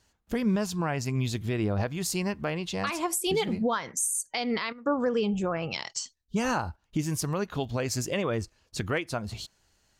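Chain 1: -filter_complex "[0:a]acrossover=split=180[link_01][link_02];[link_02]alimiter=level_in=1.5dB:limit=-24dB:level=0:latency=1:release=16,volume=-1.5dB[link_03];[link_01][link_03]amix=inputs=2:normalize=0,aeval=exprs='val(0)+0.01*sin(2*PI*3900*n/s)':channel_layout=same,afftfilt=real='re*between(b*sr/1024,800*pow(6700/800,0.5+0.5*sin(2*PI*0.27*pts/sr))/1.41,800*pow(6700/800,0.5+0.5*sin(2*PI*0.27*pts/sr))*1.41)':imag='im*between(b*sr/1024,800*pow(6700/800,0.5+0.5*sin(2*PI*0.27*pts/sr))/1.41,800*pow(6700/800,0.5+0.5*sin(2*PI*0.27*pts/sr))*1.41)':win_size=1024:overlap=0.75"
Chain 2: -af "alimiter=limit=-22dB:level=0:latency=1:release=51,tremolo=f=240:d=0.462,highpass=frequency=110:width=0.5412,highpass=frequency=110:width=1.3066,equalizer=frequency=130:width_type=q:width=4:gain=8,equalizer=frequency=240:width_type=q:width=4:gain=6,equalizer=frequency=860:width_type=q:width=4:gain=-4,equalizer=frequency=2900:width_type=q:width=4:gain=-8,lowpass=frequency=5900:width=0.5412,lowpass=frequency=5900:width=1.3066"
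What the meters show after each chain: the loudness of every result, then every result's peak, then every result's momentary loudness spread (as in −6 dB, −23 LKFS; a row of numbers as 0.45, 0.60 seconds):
−42.0, −32.5 LKFS; −25.0, −18.5 dBFS; 15, 11 LU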